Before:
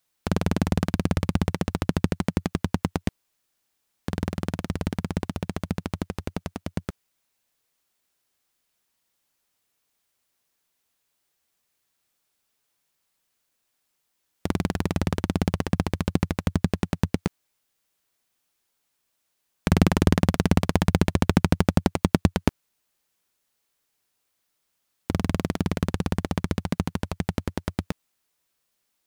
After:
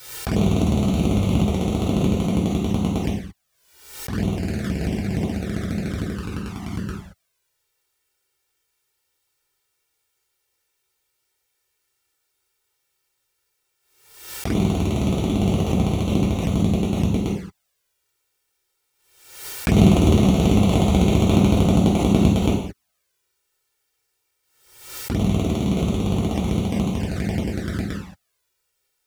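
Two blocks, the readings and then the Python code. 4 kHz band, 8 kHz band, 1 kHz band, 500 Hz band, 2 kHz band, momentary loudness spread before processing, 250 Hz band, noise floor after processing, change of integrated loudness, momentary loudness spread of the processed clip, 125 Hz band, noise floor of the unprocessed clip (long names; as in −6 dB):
+4.5 dB, +5.0 dB, +2.0 dB, +5.5 dB, 0.0 dB, 12 LU, +6.0 dB, −74 dBFS, +5.5 dB, 14 LU, +5.5 dB, −76 dBFS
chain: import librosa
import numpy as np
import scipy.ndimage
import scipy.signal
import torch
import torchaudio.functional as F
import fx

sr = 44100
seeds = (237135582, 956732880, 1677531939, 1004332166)

y = fx.rev_gated(x, sr, seeds[0], gate_ms=250, shape='falling', drr_db=-6.5)
y = fx.env_flanger(y, sr, rest_ms=2.2, full_db=-17.0)
y = fx.pre_swell(y, sr, db_per_s=73.0)
y = y * 10.0 ** (-1.5 / 20.0)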